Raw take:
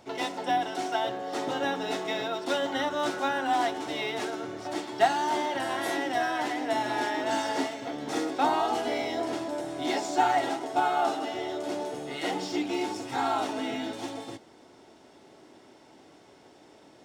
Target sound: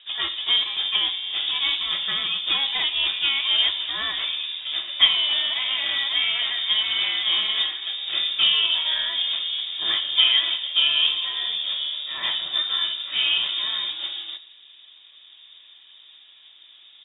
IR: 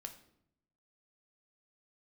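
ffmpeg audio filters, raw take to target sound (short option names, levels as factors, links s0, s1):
-filter_complex "[0:a]adynamicsmooth=sensitivity=8:basefreq=2700,asplit=2[s0][s1];[s1]asetrate=33038,aresample=44100,atempo=1.33484,volume=0.355[s2];[s0][s2]amix=inputs=2:normalize=0,asplit=2[s3][s4];[1:a]atrim=start_sample=2205,asetrate=33957,aresample=44100[s5];[s4][s5]afir=irnorm=-1:irlink=0,volume=1.19[s6];[s3][s6]amix=inputs=2:normalize=0,lowpass=f=3300:t=q:w=0.5098,lowpass=f=3300:t=q:w=0.6013,lowpass=f=3300:t=q:w=0.9,lowpass=f=3300:t=q:w=2.563,afreqshift=-3900"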